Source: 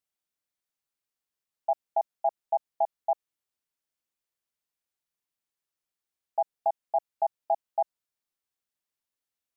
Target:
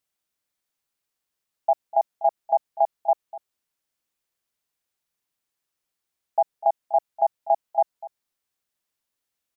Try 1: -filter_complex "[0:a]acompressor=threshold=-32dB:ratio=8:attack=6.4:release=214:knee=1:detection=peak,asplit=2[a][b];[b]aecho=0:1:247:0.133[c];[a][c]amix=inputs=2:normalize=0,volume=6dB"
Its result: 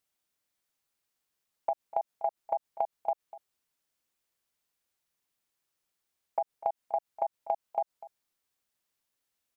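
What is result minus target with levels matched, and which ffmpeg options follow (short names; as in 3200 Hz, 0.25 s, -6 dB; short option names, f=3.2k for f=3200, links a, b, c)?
compressor: peak gain reduction +12 dB
-filter_complex "[0:a]asplit=2[a][b];[b]aecho=0:1:247:0.133[c];[a][c]amix=inputs=2:normalize=0,volume=6dB"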